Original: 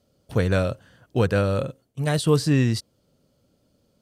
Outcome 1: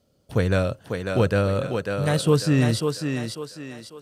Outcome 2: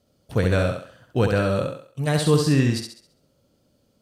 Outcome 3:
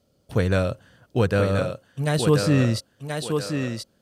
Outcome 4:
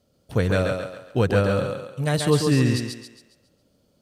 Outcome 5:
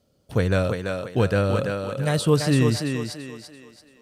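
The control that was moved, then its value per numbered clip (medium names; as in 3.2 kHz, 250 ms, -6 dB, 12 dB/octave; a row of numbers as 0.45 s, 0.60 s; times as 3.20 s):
thinning echo, time: 546 ms, 67 ms, 1030 ms, 137 ms, 337 ms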